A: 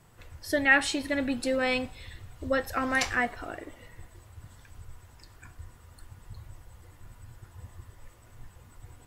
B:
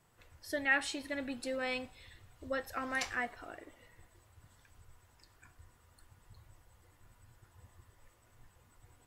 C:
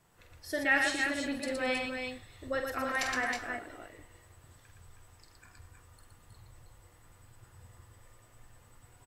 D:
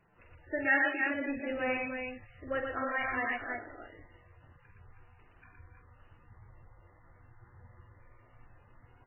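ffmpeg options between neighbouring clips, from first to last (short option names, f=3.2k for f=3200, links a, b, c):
-af "lowshelf=f=240:g=-6,volume=-8.5dB"
-af "aecho=1:1:47|117|218|317|337:0.447|0.631|0.15|0.501|0.299,volume=2dB"
-ar 12000 -c:a libmp3lame -b:a 8k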